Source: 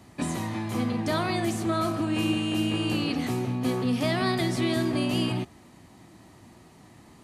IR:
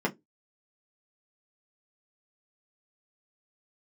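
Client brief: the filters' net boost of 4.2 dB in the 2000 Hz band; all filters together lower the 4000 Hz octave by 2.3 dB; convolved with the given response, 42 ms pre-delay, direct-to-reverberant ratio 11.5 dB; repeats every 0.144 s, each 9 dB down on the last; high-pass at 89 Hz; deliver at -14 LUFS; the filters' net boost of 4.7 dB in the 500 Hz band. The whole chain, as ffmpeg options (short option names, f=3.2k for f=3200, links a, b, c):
-filter_complex "[0:a]highpass=89,equalizer=f=500:t=o:g=7,equalizer=f=2k:t=o:g=7,equalizer=f=4k:t=o:g=-7.5,aecho=1:1:144|288|432|576:0.355|0.124|0.0435|0.0152,asplit=2[a][b];[1:a]atrim=start_sample=2205,adelay=42[c];[b][c]afir=irnorm=-1:irlink=0,volume=-21dB[d];[a][d]amix=inputs=2:normalize=0,volume=9.5dB"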